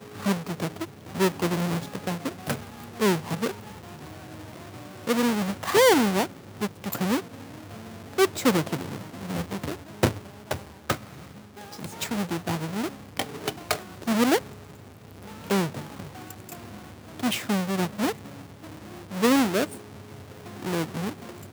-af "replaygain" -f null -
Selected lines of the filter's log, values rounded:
track_gain = +6.8 dB
track_peak = 0.403